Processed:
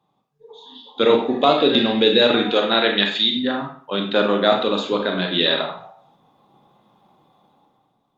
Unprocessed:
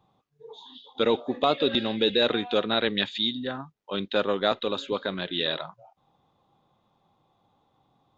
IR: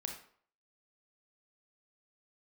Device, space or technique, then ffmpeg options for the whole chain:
far-field microphone of a smart speaker: -filter_complex "[0:a]asettb=1/sr,asplit=3[a][b][c];[a]atrim=end=2.474[d];[b]atrim=start=2.47:end=3.36,asetpts=PTS-STARTPTS,afade=t=in:d=0.004:c=qsin,afade=t=out:st=0.886:d=0.004:c=qsin,highpass=f=370:p=1[e];[c]atrim=start=3.356[f];[d][e]acrossfade=d=0.004:c1=hsin:c2=qsin[g];[g][f]acrossfade=d=0.004:c1=qsin:c2=hsin[h];[1:a]atrim=start_sample=2205[i];[h][i]afir=irnorm=-1:irlink=0,highpass=f=130:w=0.5412,highpass=f=130:w=1.3066,dynaudnorm=f=210:g=7:m=13dB" -ar 48000 -c:a libopus -b:a 48k

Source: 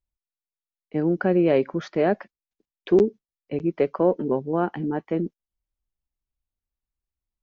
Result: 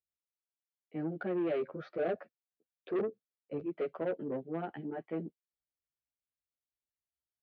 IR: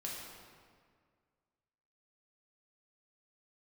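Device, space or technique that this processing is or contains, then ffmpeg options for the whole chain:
barber-pole flanger into a guitar amplifier: -filter_complex "[0:a]asettb=1/sr,asplit=3[a][b][c];[a]atrim=end=1.614[d];[b]atrim=start=1.61:end=3.62,asetpts=PTS-STARTPTS,afade=t=in:d=0.004:c=qsin,afade=t=out:st=2.006:d=0.004:c=qsin,equalizer=f=500:t=o:w=0.33:g=8,equalizer=f=1.25k:t=o:w=0.33:g=6,equalizer=f=2k:t=o:w=0.33:g=-6,equalizer=f=3.15k:t=o:w=0.33:g=-8[e];[c]atrim=start=3.616[f];[d][e]acrossfade=d=0.004:c1=hsin:c2=qsin[g];[g][f]acrossfade=d=0.004:c1=qsin:c2=hsin,asplit=2[h][i];[i]adelay=10.7,afreqshift=-1.7[j];[h][j]amix=inputs=2:normalize=1,asoftclip=type=tanh:threshold=-20.5dB,highpass=100,equalizer=f=210:t=q:w=4:g=-4,equalizer=f=660:t=q:w=4:g=4,equalizer=f=990:t=q:w=4:g=-9,lowpass=f=3.7k:w=0.5412,lowpass=f=3.7k:w=1.3066,volume=-7.5dB"

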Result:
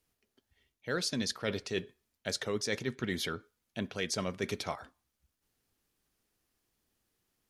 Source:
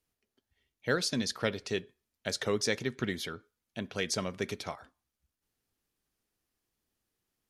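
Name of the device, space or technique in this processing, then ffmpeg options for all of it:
compression on the reversed sound: -af "areverse,acompressor=threshold=-34dB:ratio=6,areverse,volume=4dB"

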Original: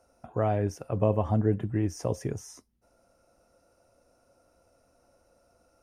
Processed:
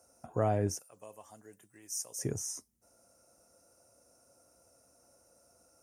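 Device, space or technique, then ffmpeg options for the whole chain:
budget condenser microphone: -filter_complex "[0:a]highpass=73,highshelf=f=5k:t=q:w=1.5:g=10.5,asettb=1/sr,asplit=3[a][b][c];[a]atrim=end=0.794[d];[b]atrim=start=0.79:end=2.19,asetpts=PTS-STARTPTS,afade=t=in:d=0.004:c=qsin,afade=t=out:st=1.396:d=0.004:c=qsin,aderivative[e];[c]atrim=start=2.186[f];[d][e]acrossfade=d=0.004:c1=hsin:c2=qsin[g];[g][f]acrossfade=d=0.004:c1=qsin:c2=hsin,volume=-2.5dB"

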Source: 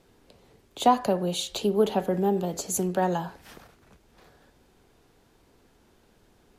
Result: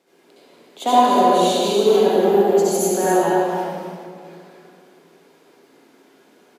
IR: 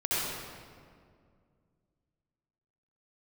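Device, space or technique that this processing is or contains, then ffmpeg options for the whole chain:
stadium PA: -filter_complex "[0:a]highpass=f=220:w=0.5412,highpass=f=220:w=1.3066,equalizer=f=2.1k:t=o:w=0.26:g=3.5,aecho=1:1:186.6|242|282.8:0.316|0.251|0.355[a];[1:a]atrim=start_sample=2205[b];[a][b]afir=irnorm=-1:irlink=0,volume=-1.5dB"

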